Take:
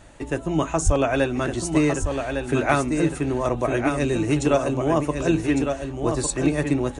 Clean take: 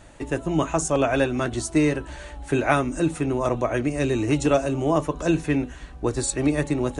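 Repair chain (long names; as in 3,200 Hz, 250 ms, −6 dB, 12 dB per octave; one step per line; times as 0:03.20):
high-pass at the plosives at 0:00.85
echo removal 1,156 ms −6 dB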